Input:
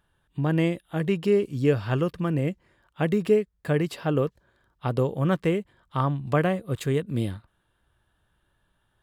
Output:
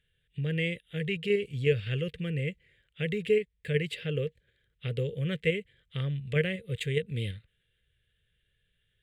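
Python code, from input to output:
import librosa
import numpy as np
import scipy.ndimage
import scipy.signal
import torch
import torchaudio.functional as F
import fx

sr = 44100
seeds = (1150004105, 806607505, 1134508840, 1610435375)

p1 = fx.curve_eq(x, sr, hz=(150.0, 310.0, 470.0, 710.0, 1000.0, 2000.0, 3400.0, 5400.0, 8200.0, 13000.0), db=(0, -15, 3, -22, -28, 8, 7, -10, -1, -9))
p2 = fx.level_steps(p1, sr, step_db=11)
p3 = p1 + (p2 * 10.0 ** (1.5 / 20.0))
y = p3 * 10.0 ** (-8.0 / 20.0)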